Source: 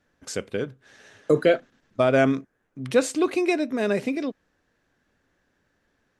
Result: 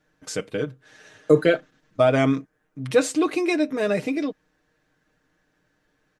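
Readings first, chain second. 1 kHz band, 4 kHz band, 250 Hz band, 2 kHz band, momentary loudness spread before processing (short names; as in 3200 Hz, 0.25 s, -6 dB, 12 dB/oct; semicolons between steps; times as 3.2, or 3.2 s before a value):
+0.5 dB, +2.0 dB, +1.5 dB, +0.5 dB, 14 LU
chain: comb 6.5 ms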